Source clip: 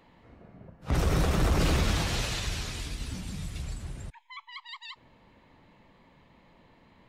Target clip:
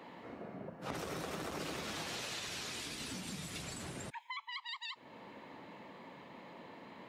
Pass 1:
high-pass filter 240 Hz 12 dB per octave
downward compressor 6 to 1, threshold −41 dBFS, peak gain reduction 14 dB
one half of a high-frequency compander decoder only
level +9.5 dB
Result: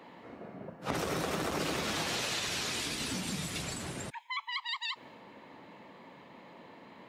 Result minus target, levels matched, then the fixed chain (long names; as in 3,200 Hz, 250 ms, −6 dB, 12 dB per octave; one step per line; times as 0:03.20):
downward compressor: peak gain reduction −8 dB
high-pass filter 240 Hz 12 dB per octave
downward compressor 6 to 1, threshold −50.5 dBFS, peak gain reduction 22 dB
one half of a high-frequency compander decoder only
level +9.5 dB